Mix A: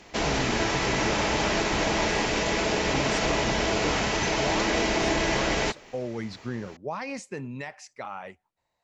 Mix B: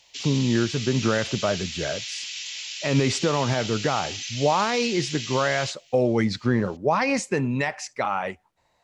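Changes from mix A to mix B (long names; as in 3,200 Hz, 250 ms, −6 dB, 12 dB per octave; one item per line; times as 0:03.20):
speech +11.5 dB
background: add Chebyshev high-pass filter 3,000 Hz, order 3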